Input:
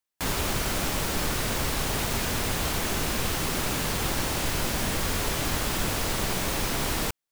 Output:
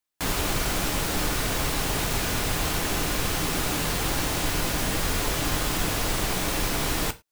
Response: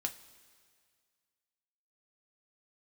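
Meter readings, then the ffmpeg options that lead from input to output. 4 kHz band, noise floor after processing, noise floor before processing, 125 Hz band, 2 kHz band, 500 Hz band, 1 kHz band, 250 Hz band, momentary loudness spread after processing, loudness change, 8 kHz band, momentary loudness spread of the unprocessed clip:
+1.5 dB, −43 dBFS, below −85 dBFS, +1.0 dB, +1.5 dB, +1.0 dB, +1.5 dB, +1.5 dB, 0 LU, +1.5 dB, +1.5 dB, 0 LU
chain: -filter_complex "[0:a]asplit=2[link_01][link_02];[1:a]atrim=start_sample=2205,afade=type=out:start_time=0.16:duration=0.01,atrim=end_sample=7497[link_03];[link_02][link_03]afir=irnorm=-1:irlink=0,volume=3.5dB[link_04];[link_01][link_04]amix=inputs=2:normalize=0,volume=-6.5dB"

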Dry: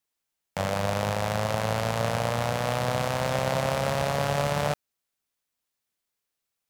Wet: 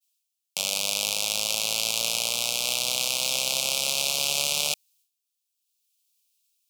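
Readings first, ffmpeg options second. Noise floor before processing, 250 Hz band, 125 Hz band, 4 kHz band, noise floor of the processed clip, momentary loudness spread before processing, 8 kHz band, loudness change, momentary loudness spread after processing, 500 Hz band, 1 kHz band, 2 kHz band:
−84 dBFS, −14.0 dB, −21.0 dB, +12.5 dB, −82 dBFS, 3 LU, +14.5 dB, +3.0 dB, 3 LU, −10.5 dB, −10.5 dB, +0.5 dB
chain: -af "aexciter=amount=13:drive=3.9:freq=2000,highpass=230,dynaudnorm=framelen=290:gausssize=7:maxgain=3dB,agate=range=-33dB:threshold=-53dB:ratio=3:detection=peak,asuperstop=centerf=1800:order=8:qfactor=1.9,volume=-6dB"

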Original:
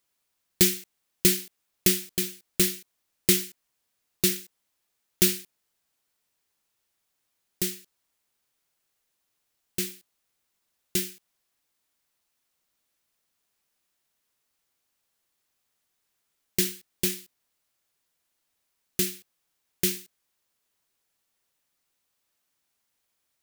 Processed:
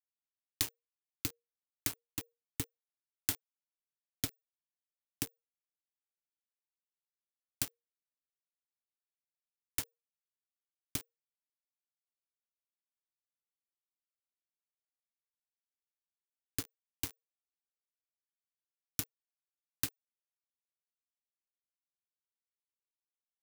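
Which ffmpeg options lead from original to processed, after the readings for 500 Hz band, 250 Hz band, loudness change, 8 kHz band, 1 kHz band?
−22.5 dB, −17.5 dB, −14.0 dB, −13.5 dB, −3.5 dB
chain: -filter_complex "[0:a]highpass=110,acompressor=threshold=-34dB:ratio=6,acrossover=split=570[link_01][link_02];[link_01]aeval=exprs='val(0)*(1-0.5/2+0.5/2*cos(2*PI*2.3*n/s))':channel_layout=same[link_03];[link_02]aeval=exprs='val(0)*(1-0.5/2-0.5/2*cos(2*PI*2.3*n/s))':channel_layout=same[link_04];[link_03][link_04]amix=inputs=2:normalize=0,aeval=exprs='val(0)*gte(abs(val(0)),0.0237)':channel_layout=same,afreqshift=-470,volume=3.5dB"

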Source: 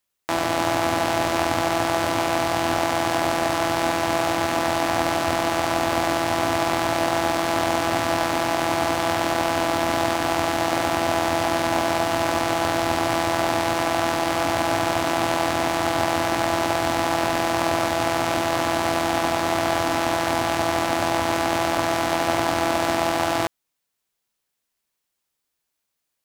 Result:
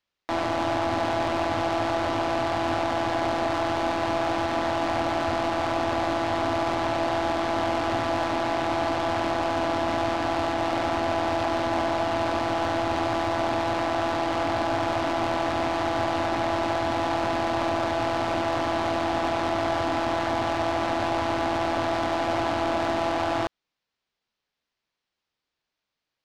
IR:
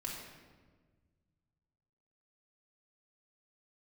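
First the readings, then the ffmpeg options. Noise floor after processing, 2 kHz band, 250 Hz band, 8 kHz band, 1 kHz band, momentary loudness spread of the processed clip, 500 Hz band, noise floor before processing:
−85 dBFS, −5.5 dB, −3.0 dB, −13.0 dB, −3.0 dB, 0 LU, −3.0 dB, −79 dBFS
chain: -af "lowpass=frequency=5000:width=0.5412,lowpass=frequency=5000:width=1.3066,asoftclip=type=tanh:threshold=-17.5dB"

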